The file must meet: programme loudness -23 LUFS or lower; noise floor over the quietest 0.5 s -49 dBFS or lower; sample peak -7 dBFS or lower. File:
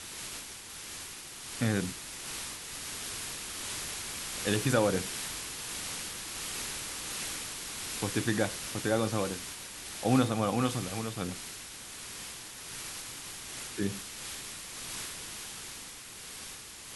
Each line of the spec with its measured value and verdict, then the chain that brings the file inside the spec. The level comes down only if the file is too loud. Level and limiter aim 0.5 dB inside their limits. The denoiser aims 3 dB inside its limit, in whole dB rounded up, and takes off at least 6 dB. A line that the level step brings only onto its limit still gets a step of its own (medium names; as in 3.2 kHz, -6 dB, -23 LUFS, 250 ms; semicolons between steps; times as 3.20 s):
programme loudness -34.5 LUFS: pass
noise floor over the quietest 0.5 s -46 dBFS: fail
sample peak -13.0 dBFS: pass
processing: noise reduction 6 dB, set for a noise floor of -46 dBFS